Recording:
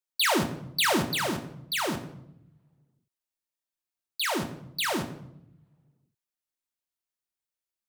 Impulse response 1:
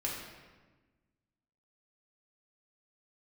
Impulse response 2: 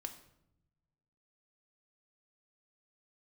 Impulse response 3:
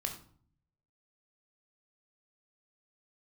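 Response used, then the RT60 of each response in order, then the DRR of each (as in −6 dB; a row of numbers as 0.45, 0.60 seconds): 2; 1.3, 0.80, 0.50 seconds; −4.0, 4.5, 3.0 decibels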